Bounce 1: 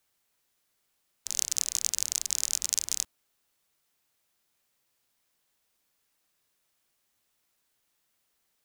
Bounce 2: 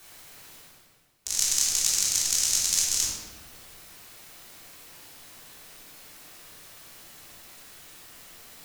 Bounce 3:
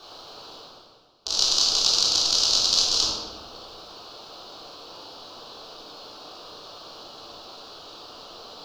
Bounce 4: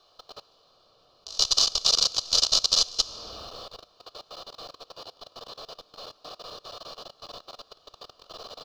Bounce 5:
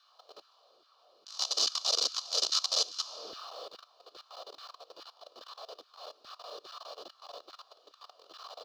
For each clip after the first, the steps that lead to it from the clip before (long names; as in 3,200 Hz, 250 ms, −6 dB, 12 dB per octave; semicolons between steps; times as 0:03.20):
reversed playback; upward compression, threshold −36 dBFS; reversed playback; rectangular room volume 730 cubic metres, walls mixed, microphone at 3.4 metres
drawn EQ curve 160 Hz 0 dB, 470 Hz +13 dB, 1,300 Hz +10 dB, 2,000 Hz −15 dB, 2,900 Hz +5 dB, 4,500 Hz +12 dB, 8,600 Hz −20 dB; level +2 dB
comb filter 1.7 ms, depth 41%; output level in coarse steps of 21 dB; level +1 dB
transient designer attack −7 dB, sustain 0 dB; auto-filter high-pass saw down 2.4 Hz 290–1,700 Hz; level −5 dB